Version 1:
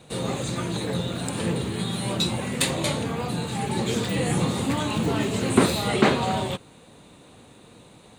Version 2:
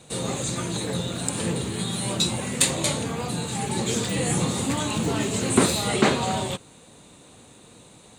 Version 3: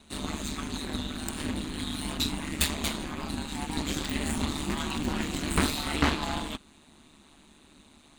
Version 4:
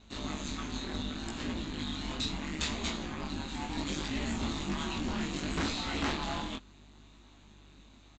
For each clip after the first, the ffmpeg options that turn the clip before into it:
-af "equalizer=f=7400:t=o:w=1.1:g=9,volume=0.891"
-af "aeval=exprs='0.841*(cos(1*acos(clip(val(0)/0.841,-1,1)))-cos(1*PI/2))+0.106*(cos(8*acos(clip(val(0)/0.841,-1,1)))-cos(8*PI/2))':c=same,aeval=exprs='val(0)*sin(2*PI*74*n/s)':c=same,equalizer=f=125:t=o:w=1:g=-9,equalizer=f=250:t=o:w=1:g=4,equalizer=f=500:t=o:w=1:g=-12,equalizer=f=8000:t=o:w=1:g=-9"
-af "aeval=exprs='val(0)+0.00158*(sin(2*PI*50*n/s)+sin(2*PI*2*50*n/s)/2+sin(2*PI*3*50*n/s)/3+sin(2*PI*4*50*n/s)/4+sin(2*PI*5*50*n/s)/5)':c=same,flanger=delay=17:depth=6.1:speed=0.69,aresample=16000,asoftclip=type=hard:threshold=0.0447,aresample=44100"

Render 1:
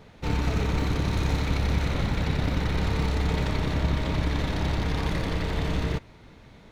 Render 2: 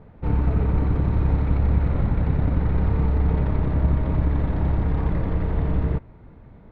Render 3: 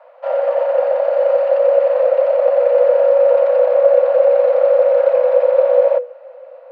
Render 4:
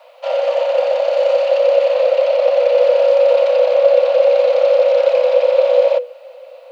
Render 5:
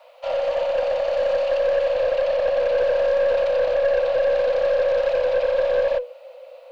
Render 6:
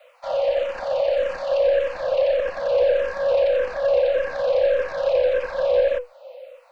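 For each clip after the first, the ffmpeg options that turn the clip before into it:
-af "lowpass=1300,lowshelf=f=180:g=7"
-af "asubboost=boost=2.5:cutoff=120,afreqshift=490,volume=1.19"
-af "aexciter=amount=5.7:drive=7.8:freq=2500"
-af "aeval=exprs='(tanh(3.16*val(0)+0.15)-tanh(0.15))/3.16':c=same,volume=0.596"
-filter_complex "[0:a]asplit=2[s0][s1];[s1]afreqshift=-1.7[s2];[s0][s2]amix=inputs=2:normalize=1,volume=1.33"

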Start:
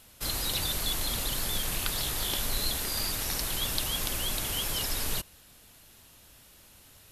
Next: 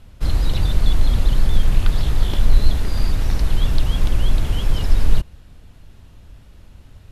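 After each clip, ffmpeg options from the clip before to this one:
-af "aemphasis=mode=reproduction:type=riaa,volume=1.58"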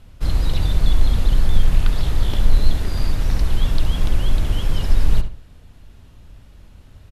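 -filter_complex "[0:a]asplit=2[s0][s1];[s1]adelay=67,lowpass=f=3700:p=1,volume=0.355,asplit=2[s2][s3];[s3]adelay=67,lowpass=f=3700:p=1,volume=0.31,asplit=2[s4][s5];[s5]adelay=67,lowpass=f=3700:p=1,volume=0.31,asplit=2[s6][s7];[s7]adelay=67,lowpass=f=3700:p=1,volume=0.31[s8];[s0][s2][s4][s6][s8]amix=inputs=5:normalize=0,volume=0.891"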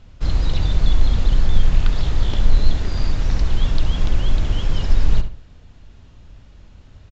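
-af "aresample=16000,aresample=44100"

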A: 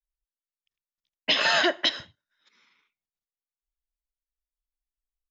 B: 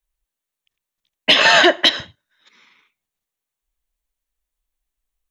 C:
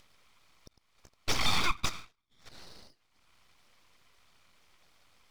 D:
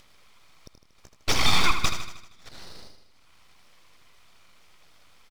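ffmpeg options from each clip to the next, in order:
-af "acontrast=74,equalizer=f=5000:w=5:g=-7,bandreject=f=1400:w=17,volume=1.68"
-filter_complex "[0:a]asplit=3[s0][s1][s2];[s0]bandpass=f=530:t=q:w=8,volume=1[s3];[s1]bandpass=f=1840:t=q:w=8,volume=0.501[s4];[s2]bandpass=f=2480:t=q:w=8,volume=0.355[s5];[s3][s4][s5]amix=inputs=3:normalize=0,acompressor=mode=upward:threshold=0.0398:ratio=2.5,aeval=exprs='abs(val(0))':c=same,volume=0.794"
-af "aecho=1:1:78|156|234|312|390|468|546:0.355|0.199|0.111|0.0623|0.0349|0.0195|0.0109,volume=2"

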